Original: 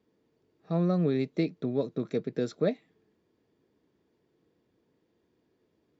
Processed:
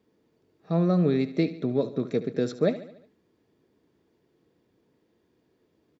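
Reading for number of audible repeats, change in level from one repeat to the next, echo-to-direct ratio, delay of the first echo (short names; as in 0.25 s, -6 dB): 4, -5.5 dB, -13.0 dB, 72 ms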